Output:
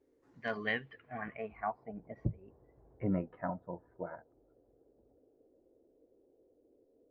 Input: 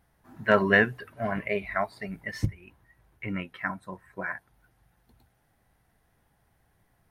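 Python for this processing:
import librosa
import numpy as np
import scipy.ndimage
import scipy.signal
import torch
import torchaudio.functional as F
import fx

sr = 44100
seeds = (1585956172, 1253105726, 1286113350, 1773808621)

y = fx.doppler_pass(x, sr, speed_mps=26, closest_m=11.0, pass_at_s=3.07)
y = fx.dmg_noise_band(y, sr, seeds[0], low_hz=250.0, high_hz=510.0, level_db=-72.0)
y = fx.filter_sweep_lowpass(y, sr, from_hz=7700.0, to_hz=650.0, start_s=0.19, end_s=1.95, q=2.1)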